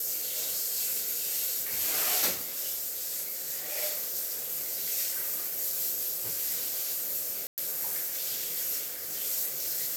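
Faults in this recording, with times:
7.47–7.58 gap 0.108 s

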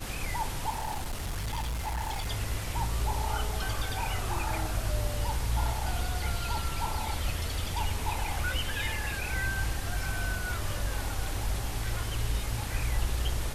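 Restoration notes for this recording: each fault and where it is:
0.7–2.28 clipped -29.5 dBFS

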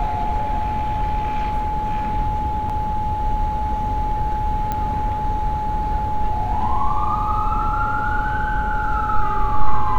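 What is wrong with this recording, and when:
tone 850 Hz -22 dBFS
2.69–2.7 gap 6.4 ms
4.72 pop -11 dBFS

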